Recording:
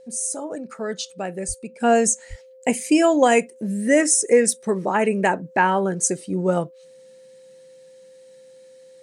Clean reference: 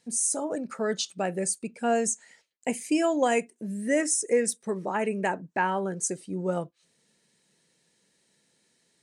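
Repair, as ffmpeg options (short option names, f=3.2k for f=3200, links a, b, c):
-filter_complex "[0:a]bandreject=f=520:w=30,asplit=3[a][b][c];[a]afade=t=out:st=1.47:d=0.02[d];[b]highpass=f=140:w=0.5412,highpass=f=140:w=1.3066,afade=t=in:st=1.47:d=0.02,afade=t=out:st=1.59:d=0.02[e];[c]afade=t=in:st=1.59:d=0.02[f];[d][e][f]amix=inputs=3:normalize=0,asplit=3[g][h][i];[g]afade=t=out:st=2.29:d=0.02[j];[h]highpass=f=140:w=0.5412,highpass=f=140:w=1.3066,afade=t=in:st=2.29:d=0.02,afade=t=out:st=2.41:d=0.02[k];[i]afade=t=in:st=2.41:d=0.02[l];[j][k][l]amix=inputs=3:normalize=0,asetnsamples=n=441:p=0,asendcmd='1.8 volume volume -8dB',volume=0dB"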